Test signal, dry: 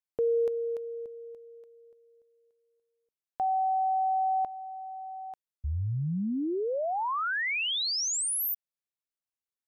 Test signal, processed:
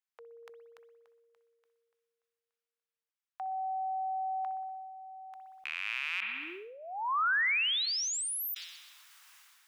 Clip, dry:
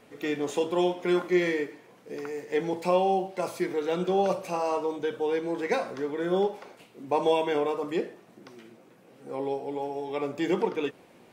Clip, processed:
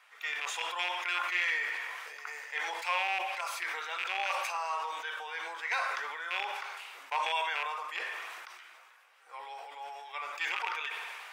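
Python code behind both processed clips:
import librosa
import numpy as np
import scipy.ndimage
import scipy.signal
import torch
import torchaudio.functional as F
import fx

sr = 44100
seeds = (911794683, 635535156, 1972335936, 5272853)

y = fx.rattle_buzz(x, sr, strikes_db=-33.0, level_db=-23.0)
y = scipy.signal.sosfilt(scipy.signal.butter(4, 1100.0, 'highpass', fs=sr, output='sos'), y)
y = fx.high_shelf(y, sr, hz=4100.0, db=-10.0)
y = fx.notch(y, sr, hz=4200.0, q=27.0)
y = fx.rev_spring(y, sr, rt60_s=1.2, pass_ms=(59,), chirp_ms=65, drr_db=16.0)
y = fx.sustainer(y, sr, db_per_s=26.0)
y = y * librosa.db_to_amplitude(3.5)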